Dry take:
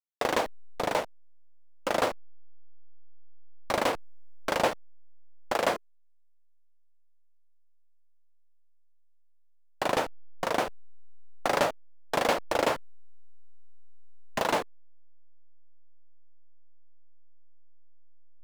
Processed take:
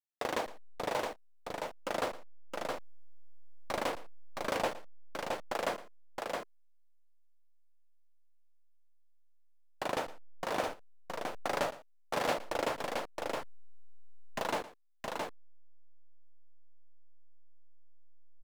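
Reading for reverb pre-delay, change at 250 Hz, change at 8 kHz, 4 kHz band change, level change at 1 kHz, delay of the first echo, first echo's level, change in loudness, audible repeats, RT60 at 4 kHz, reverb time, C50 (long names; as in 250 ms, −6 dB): no reverb audible, −6.0 dB, −6.0 dB, −6.0 dB, −6.0 dB, 114 ms, −17.5 dB, −7.5 dB, 2, no reverb audible, no reverb audible, no reverb audible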